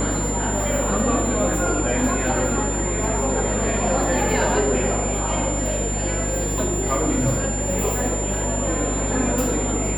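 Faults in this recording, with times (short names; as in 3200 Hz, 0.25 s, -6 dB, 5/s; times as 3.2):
buzz 50 Hz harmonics 19 -26 dBFS
tone 7200 Hz -27 dBFS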